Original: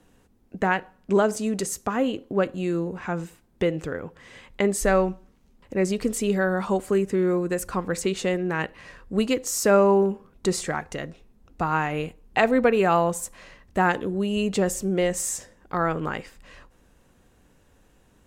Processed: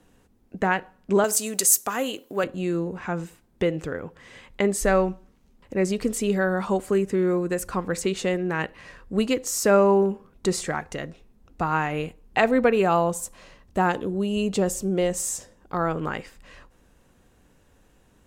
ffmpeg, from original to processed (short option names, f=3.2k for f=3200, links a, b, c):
-filter_complex "[0:a]asettb=1/sr,asplit=3[a][b][c];[a]atrim=end=1.244[d];[b]atrim=start=1.24:end=2.44,asetpts=PTS-STARTPTS,afade=t=in:d=0.004:c=qsin,afade=t=out:st=1.196:d=0.004:c=qsin,aemphasis=mode=production:type=riaa[e];[c]atrim=start=2.436[f];[d][e]acrossfade=d=0.004:c1=hsin:c2=qsin[g];[g][f]acrossfade=d=0.004:c1=qsin:c2=hsin,asettb=1/sr,asplit=3[h][i][j];[h]atrim=end=12.824[k];[i]atrim=start=12.82:end=15.98,asetpts=PTS-STARTPTS,afade=t=in:d=0.004:c=qsin,afade=t=out:st=3.156:d=0.004:c=qsin,equalizer=f=1.9k:t=o:w=0.77:g=-5.5[l];[j]atrim=start=15.976[m];[k][l]acrossfade=d=0.004:c1=hsin:c2=qsin[n];[n][m]acrossfade=d=0.004:c1=qsin:c2=hsin"